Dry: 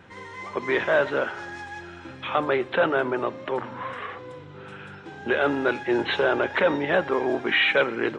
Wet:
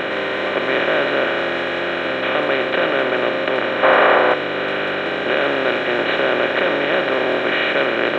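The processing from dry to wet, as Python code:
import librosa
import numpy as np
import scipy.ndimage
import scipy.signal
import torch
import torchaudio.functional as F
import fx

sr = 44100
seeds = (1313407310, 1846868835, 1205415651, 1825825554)

y = fx.bin_compress(x, sr, power=0.2)
y = fx.peak_eq(y, sr, hz=880.0, db=12.5, octaves=2.0, at=(3.83, 4.34))
y = F.gain(torch.from_numpy(y), -4.5).numpy()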